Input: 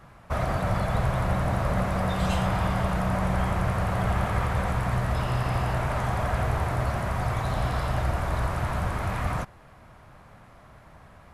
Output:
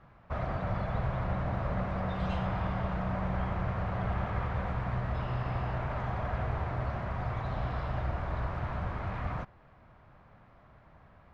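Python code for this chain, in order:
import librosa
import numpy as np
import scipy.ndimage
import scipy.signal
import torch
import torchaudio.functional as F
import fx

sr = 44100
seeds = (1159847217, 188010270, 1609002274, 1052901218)

y = fx.air_absorb(x, sr, metres=220.0)
y = F.gain(torch.from_numpy(y), -6.5).numpy()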